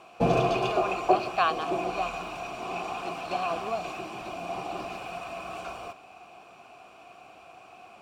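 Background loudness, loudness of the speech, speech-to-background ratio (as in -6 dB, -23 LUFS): -31.5 LUFS, -33.0 LUFS, -1.5 dB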